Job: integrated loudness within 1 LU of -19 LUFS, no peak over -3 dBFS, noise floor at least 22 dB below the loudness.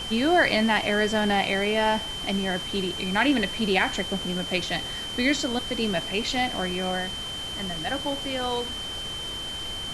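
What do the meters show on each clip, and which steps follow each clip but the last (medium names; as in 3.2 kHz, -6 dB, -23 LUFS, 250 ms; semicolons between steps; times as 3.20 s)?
steady tone 3.1 kHz; tone level -32 dBFS; noise floor -34 dBFS; noise floor target -48 dBFS; loudness -25.5 LUFS; peak level -8.5 dBFS; loudness target -19.0 LUFS
-> band-stop 3.1 kHz, Q 30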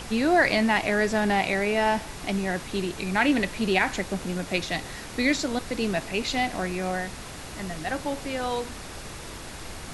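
steady tone not found; noise floor -39 dBFS; noise floor target -48 dBFS
-> noise print and reduce 9 dB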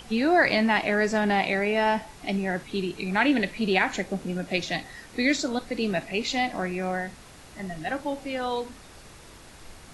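noise floor -48 dBFS; loudness -26.0 LUFS; peak level -8.5 dBFS; loudness target -19.0 LUFS
-> trim +7 dB; peak limiter -3 dBFS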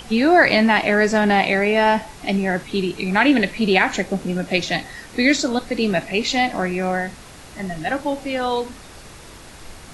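loudness -19.0 LUFS; peak level -3.0 dBFS; noise floor -41 dBFS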